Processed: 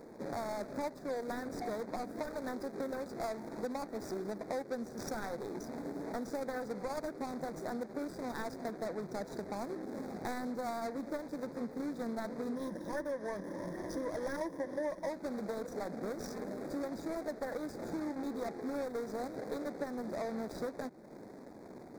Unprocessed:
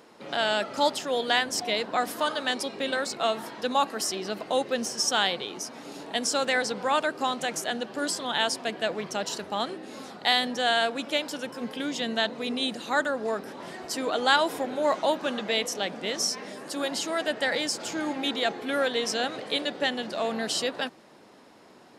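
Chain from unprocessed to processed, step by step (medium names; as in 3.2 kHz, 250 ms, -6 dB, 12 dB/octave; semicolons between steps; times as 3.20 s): median filter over 41 samples; 12.55–15.09 s: rippled EQ curve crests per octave 1.2, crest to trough 11 dB; compression 4:1, threshold -44 dBFS, peak gain reduction 20 dB; Butterworth band-stop 2.9 kHz, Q 1.7; trim +6 dB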